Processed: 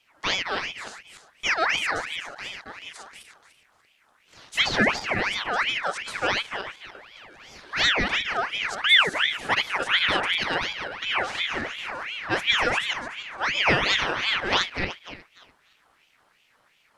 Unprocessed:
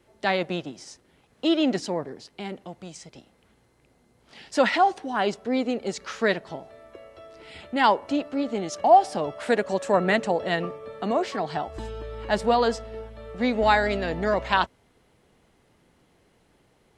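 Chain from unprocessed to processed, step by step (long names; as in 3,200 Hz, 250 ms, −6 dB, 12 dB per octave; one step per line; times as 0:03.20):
feedback delay that plays each chunk backwards 147 ms, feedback 49%, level −3.5 dB
ring modulator whose carrier an LFO sweeps 1,900 Hz, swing 50%, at 2.8 Hz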